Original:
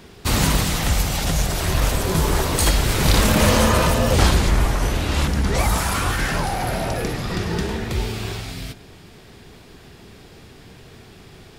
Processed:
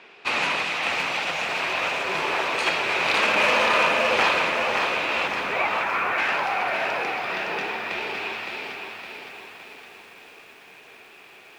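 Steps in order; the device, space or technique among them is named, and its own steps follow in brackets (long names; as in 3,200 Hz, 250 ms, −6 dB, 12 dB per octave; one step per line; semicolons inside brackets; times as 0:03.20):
megaphone (band-pass filter 600–2,900 Hz; parametric band 2,500 Hz +11.5 dB 0.3 octaves; hard clipping −13.5 dBFS, distortion −26 dB)
0:05.39–0:06.18: Butterworth low-pass 2,400 Hz 36 dB per octave
feedback echo at a low word length 563 ms, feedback 55%, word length 9 bits, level −5 dB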